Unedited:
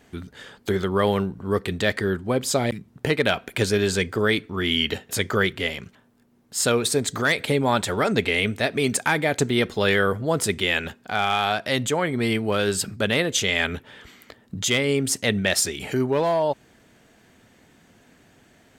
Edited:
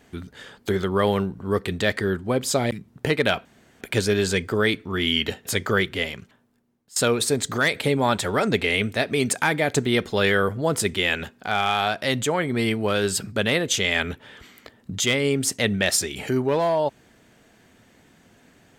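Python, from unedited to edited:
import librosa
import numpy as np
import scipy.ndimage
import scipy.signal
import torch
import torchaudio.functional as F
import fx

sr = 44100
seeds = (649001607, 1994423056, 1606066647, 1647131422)

y = fx.edit(x, sr, fx.insert_room_tone(at_s=3.45, length_s=0.36),
    fx.fade_out_to(start_s=5.71, length_s=0.89, floor_db=-21.0), tone=tone)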